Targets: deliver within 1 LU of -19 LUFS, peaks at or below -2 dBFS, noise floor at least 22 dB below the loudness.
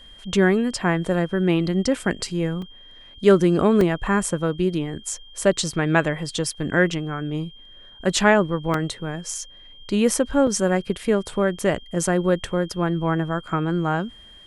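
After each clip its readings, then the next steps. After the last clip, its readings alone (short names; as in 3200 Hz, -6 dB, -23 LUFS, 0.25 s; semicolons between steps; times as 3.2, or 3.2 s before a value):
dropouts 4; longest dropout 2.5 ms; steady tone 3200 Hz; tone level -45 dBFS; loudness -22.0 LUFS; peak -3.0 dBFS; loudness target -19.0 LUFS
-> interpolate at 2.62/3.81/8.74/10.47, 2.5 ms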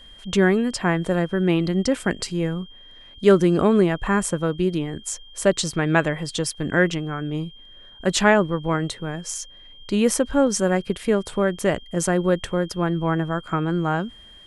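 dropouts 0; steady tone 3200 Hz; tone level -45 dBFS
-> notch 3200 Hz, Q 30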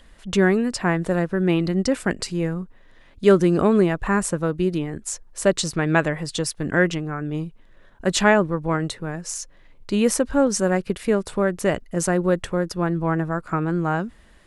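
steady tone none; loudness -22.0 LUFS; peak -3.0 dBFS; loudness target -19.0 LUFS
-> gain +3 dB; limiter -2 dBFS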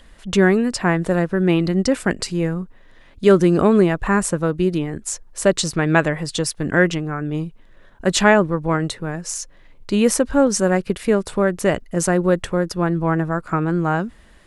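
loudness -19.5 LUFS; peak -2.0 dBFS; noise floor -48 dBFS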